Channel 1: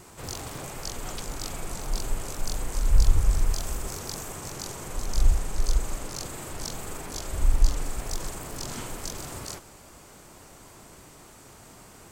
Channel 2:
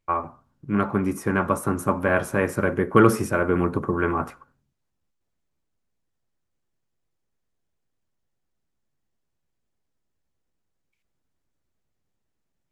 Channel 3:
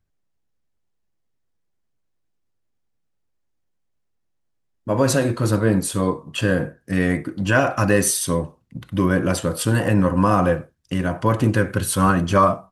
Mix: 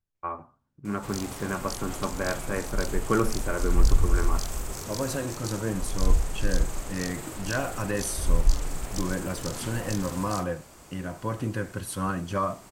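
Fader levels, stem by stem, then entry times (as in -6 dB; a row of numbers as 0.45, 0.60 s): -1.0, -8.5, -12.0 dB; 0.85, 0.15, 0.00 s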